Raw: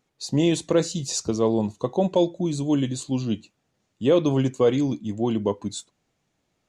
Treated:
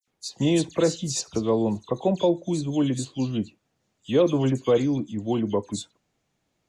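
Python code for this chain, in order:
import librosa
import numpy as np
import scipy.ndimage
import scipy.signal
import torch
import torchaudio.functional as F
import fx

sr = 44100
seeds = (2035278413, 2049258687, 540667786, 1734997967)

y = fx.dispersion(x, sr, late='lows', ms=78.0, hz=3000.0)
y = y * 10.0 ** (-1.0 / 20.0)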